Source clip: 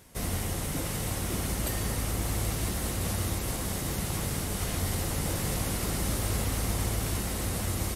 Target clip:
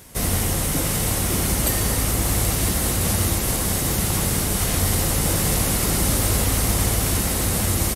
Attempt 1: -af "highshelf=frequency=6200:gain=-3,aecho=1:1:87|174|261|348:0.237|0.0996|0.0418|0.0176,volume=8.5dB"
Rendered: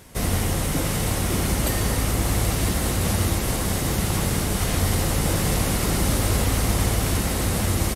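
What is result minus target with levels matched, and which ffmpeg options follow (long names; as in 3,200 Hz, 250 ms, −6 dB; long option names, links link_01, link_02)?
8,000 Hz band −3.0 dB
-af "highshelf=frequency=6200:gain=5,aecho=1:1:87|174|261|348:0.237|0.0996|0.0418|0.0176,volume=8.5dB"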